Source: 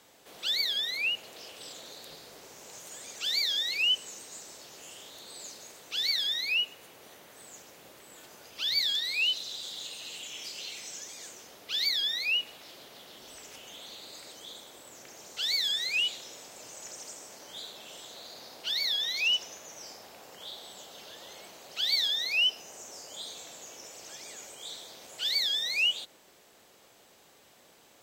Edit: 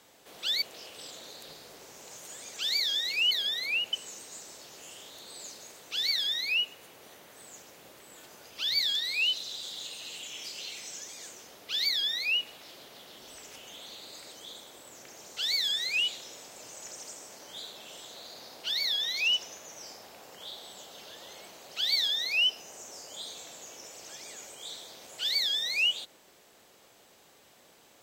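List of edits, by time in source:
0.62–1.24 s: move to 3.93 s

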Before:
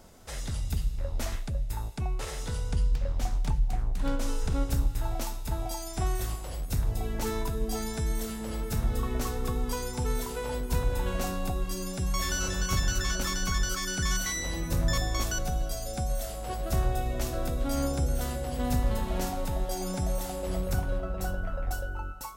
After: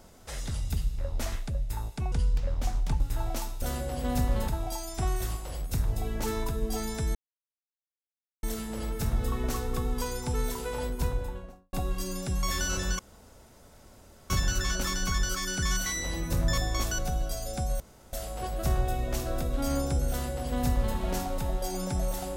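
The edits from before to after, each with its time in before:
2.12–2.70 s: delete
3.58–4.85 s: delete
8.14 s: insert silence 1.28 s
10.56–11.44 s: studio fade out
12.70 s: insert room tone 1.31 s
16.20 s: insert room tone 0.33 s
18.17–19.03 s: copy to 5.47 s

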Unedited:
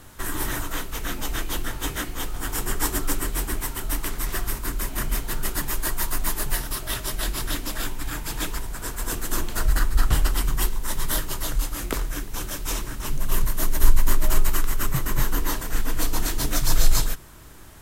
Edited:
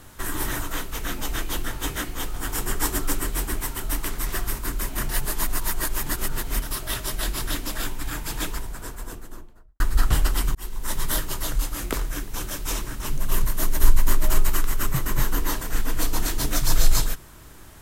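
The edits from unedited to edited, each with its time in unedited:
5.09–6.62 s: reverse
8.36–9.80 s: studio fade out
10.55–10.89 s: fade in

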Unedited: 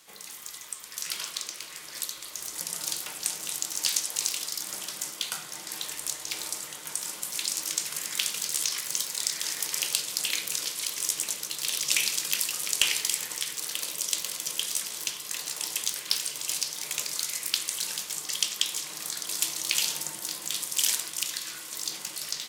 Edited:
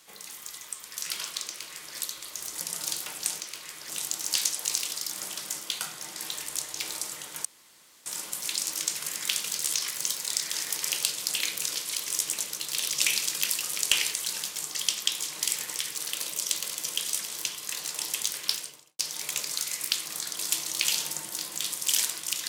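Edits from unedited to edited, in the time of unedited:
1.47–1.96 s: copy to 3.40 s
6.96 s: insert room tone 0.61 s
16.07–16.61 s: studio fade out
17.68–18.96 s: move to 13.04 s

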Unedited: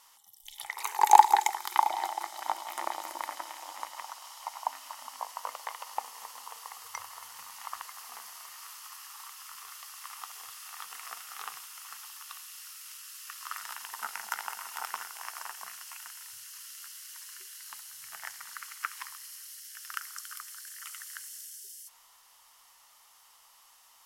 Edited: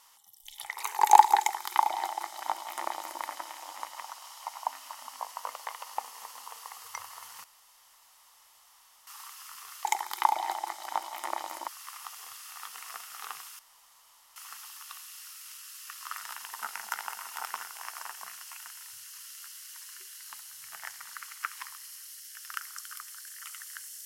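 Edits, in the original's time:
1.39–3.22 s: copy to 9.85 s
7.44–9.07 s: room tone
11.76 s: insert room tone 0.77 s

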